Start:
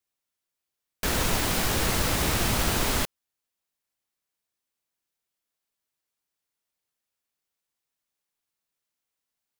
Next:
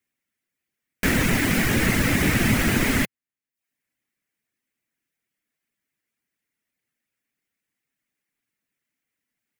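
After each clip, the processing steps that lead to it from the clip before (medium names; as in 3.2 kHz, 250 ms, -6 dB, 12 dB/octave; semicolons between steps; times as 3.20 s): reverb removal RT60 0.54 s; graphic EQ 125/250/1000/2000/4000 Hz +6/+11/-5/+12/-5 dB; trim +1.5 dB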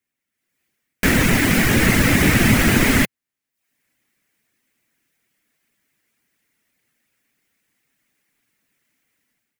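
level rider gain up to 13.5 dB; trim -1 dB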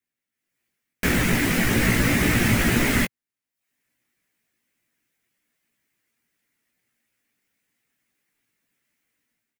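doubling 17 ms -5.5 dB; trim -6 dB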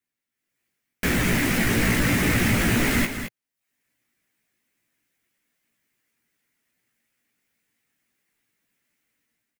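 saturation -13.5 dBFS, distortion -18 dB; delay 216 ms -9 dB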